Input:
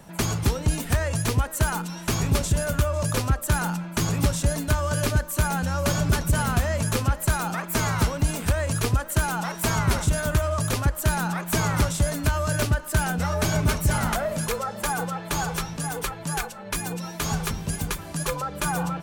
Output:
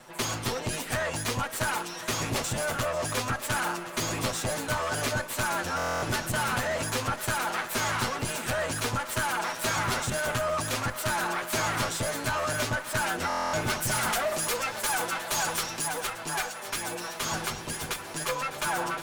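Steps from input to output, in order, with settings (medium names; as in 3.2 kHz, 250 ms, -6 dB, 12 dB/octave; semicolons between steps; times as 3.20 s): comb filter that takes the minimum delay 8 ms; 13.82–15.88 s: treble shelf 4.3 kHz +8.5 dB; overdrive pedal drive 15 dB, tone 5.8 kHz, clips at -10.5 dBFS; thinning echo 1068 ms, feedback 51%, high-pass 420 Hz, level -13 dB; buffer glitch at 5.77/13.28 s, samples 1024, times 10; trim -6.5 dB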